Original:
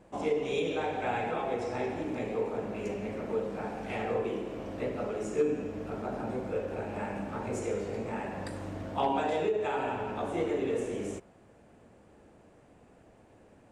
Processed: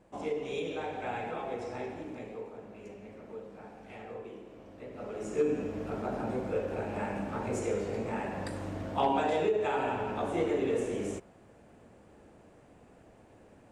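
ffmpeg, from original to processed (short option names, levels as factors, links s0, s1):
-af "volume=2.66,afade=t=out:st=1.68:d=0.88:silence=0.421697,afade=t=in:st=4.87:d=0.71:silence=0.223872"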